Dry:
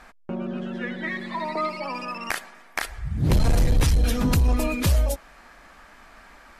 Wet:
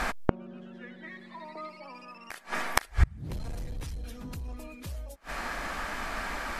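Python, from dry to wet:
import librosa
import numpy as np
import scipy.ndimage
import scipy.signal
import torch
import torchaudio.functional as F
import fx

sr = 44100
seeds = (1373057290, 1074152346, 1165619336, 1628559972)

p1 = fx.rider(x, sr, range_db=5, speed_s=2.0)
p2 = x + (p1 * librosa.db_to_amplitude(3.0))
p3 = fx.gate_flip(p2, sr, shuts_db=-17.0, range_db=-33)
y = p3 * librosa.db_to_amplitude(8.0)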